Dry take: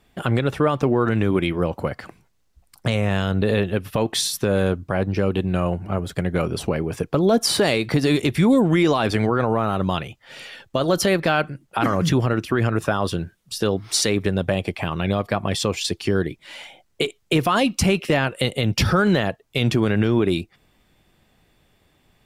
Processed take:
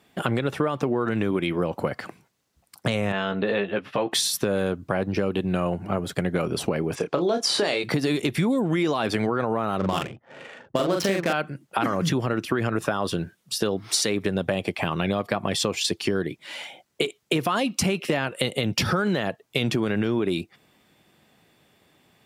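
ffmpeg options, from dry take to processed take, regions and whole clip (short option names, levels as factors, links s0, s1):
-filter_complex "[0:a]asettb=1/sr,asplit=3[s0][s1][s2];[s0]atrim=end=3.124[s3];[s1]atrim=start=3.12:end=4.12,asetpts=PTS-STARTPTS,afade=t=in:d=0.004:c=qsin,afade=t=out:st=0.996:d=0.004:c=qsin,lowpass=3100,lowshelf=f=300:g=-11.5,asplit=2[s4][s5];[s5]adelay=15,volume=0.531[s6];[s4][s6]amix=inputs=2:normalize=0,atrim=end_sample=44100[s7];[s2]atrim=start=4.116[s8];[s3][s7]acrossfade=d=0.004:c1=hsin:c2=qsin[s9];[s9][s8]acrossfade=d=0.004:c1=qsin:c2=hsin,asettb=1/sr,asplit=3[s10][s11][s12];[s10]atrim=end=6.954[s13];[s11]atrim=start=6.95:end=7.84,asetpts=PTS-STARTPTS,afade=t=in:d=0.004:c=qsin,afade=t=out:st=0.886:d=0.004:c=qsin,lowpass=6300,bass=f=250:g=-10,treble=f=4000:g=3,asplit=2[s14][s15];[s15]adelay=29,volume=0.473[s16];[s14][s16]amix=inputs=2:normalize=0,atrim=end_sample=39249[s17];[s12]atrim=start=7.836[s18];[s13][s17]acrossfade=d=0.004:c1=hsin:c2=qsin[s19];[s19][s18]acrossfade=d=0.004:c1=qsin:c2=hsin,asettb=1/sr,asplit=3[s20][s21][s22];[s20]atrim=end=9.784[s23];[s21]atrim=start=9.78:end=11.33,asetpts=PTS-STARTPTS,afade=t=in:d=0.004:c=qsin,afade=t=out:st=1.546:d=0.004:c=qsin,adynamicsmooth=sensitivity=4:basefreq=630,asplit=2[s24][s25];[s25]adelay=41,volume=0.708[s26];[s24][s26]amix=inputs=2:normalize=0,atrim=end_sample=68355[s27];[s22]atrim=start=11.326[s28];[s23][s27]acrossfade=d=0.004:c1=hsin:c2=qsin[s29];[s29][s28]acrossfade=d=0.004:c1=qsin:c2=hsin,highpass=140,acompressor=threshold=0.0794:ratio=6,volume=1.26"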